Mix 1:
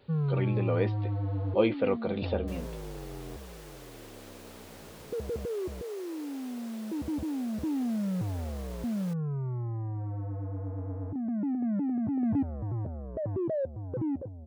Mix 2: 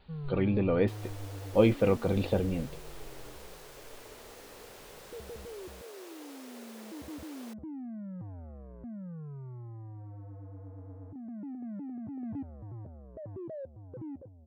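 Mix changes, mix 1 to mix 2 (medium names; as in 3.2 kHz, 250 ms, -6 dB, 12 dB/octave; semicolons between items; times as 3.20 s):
speech: remove high-pass 320 Hz 6 dB/octave; first sound -10.5 dB; second sound: entry -1.60 s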